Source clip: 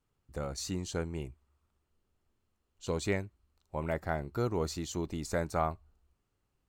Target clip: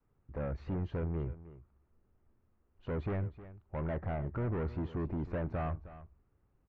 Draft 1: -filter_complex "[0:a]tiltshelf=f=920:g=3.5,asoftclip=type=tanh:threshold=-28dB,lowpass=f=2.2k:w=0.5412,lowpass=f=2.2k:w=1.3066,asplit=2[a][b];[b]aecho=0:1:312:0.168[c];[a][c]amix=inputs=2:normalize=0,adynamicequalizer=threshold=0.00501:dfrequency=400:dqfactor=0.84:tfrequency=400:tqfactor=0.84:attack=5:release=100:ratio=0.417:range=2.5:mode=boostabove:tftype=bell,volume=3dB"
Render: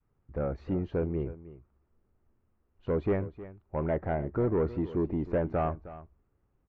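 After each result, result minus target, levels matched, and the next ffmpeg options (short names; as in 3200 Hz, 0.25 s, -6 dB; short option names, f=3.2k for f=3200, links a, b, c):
125 Hz band -4.0 dB; soft clip: distortion -5 dB
-filter_complex "[0:a]tiltshelf=f=920:g=3.5,asoftclip=type=tanh:threshold=-28dB,lowpass=f=2.2k:w=0.5412,lowpass=f=2.2k:w=1.3066,asplit=2[a][b];[b]aecho=0:1:312:0.168[c];[a][c]amix=inputs=2:normalize=0,adynamicequalizer=threshold=0.00501:dfrequency=100:dqfactor=0.84:tfrequency=100:tqfactor=0.84:attack=5:release=100:ratio=0.417:range=2.5:mode=boostabove:tftype=bell,volume=3dB"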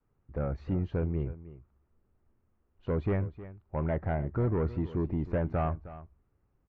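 soft clip: distortion -5 dB
-filter_complex "[0:a]tiltshelf=f=920:g=3.5,asoftclip=type=tanh:threshold=-37dB,lowpass=f=2.2k:w=0.5412,lowpass=f=2.2k:w=1.3066,asplit=2[a][b];[b]aecho=0:1:312:0.168[c];[a][c]amix=inputs=2:normalize=0,adynamicequalizer=threshold=0.00501:dfrequency=100:dqfactor=0.84:tfrequency=100:tqfactor=0.84:attack=5:release=100:ratio=0.417:range=2.5:mode=boostabove:tftype=bell,volume=3dB"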